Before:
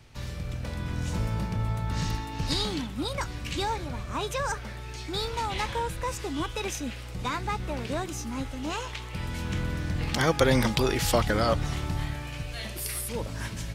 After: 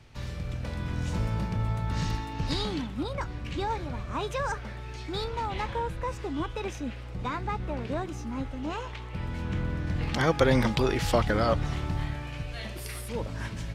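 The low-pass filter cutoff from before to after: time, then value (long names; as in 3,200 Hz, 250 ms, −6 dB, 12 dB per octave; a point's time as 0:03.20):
low-pass filter 6 dB per octave
5,100 Hz
from 0:02.33 2,900 Hz
from 0:03.03 1,500 Hz
from 0:03.70 2,900 Hz
from 0:05.24 1,600 Hz
from 0:09.87 3,000 Hz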